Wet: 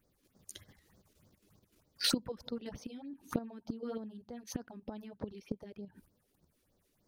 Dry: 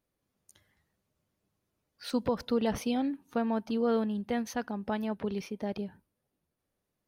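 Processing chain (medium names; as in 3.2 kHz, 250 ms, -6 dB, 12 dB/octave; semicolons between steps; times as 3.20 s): level held to a coarse grid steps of 9 dB; inverted gate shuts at -32 dBFS, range -24 dB; phase shifter stages 4, 3.3 Hz, lowest notch 110–2800 Hz; trim +16 dB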